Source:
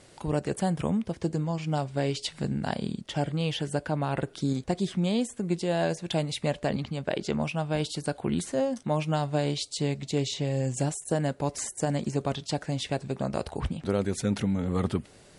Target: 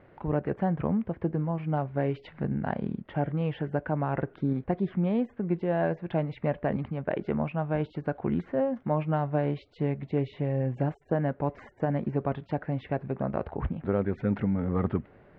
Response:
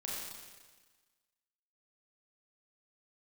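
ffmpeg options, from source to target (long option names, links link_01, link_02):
-af "lowpass=frequency=2000:width=0.5412,lowpass=frequency=2000:width=1.3066"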